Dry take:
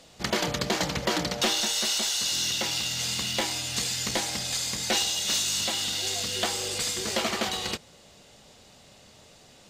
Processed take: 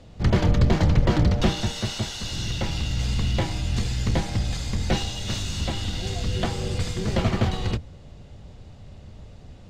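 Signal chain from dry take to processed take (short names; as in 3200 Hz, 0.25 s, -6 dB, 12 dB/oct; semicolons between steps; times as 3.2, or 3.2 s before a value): octaver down 1 oct, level +1 dB; RIAA curve playback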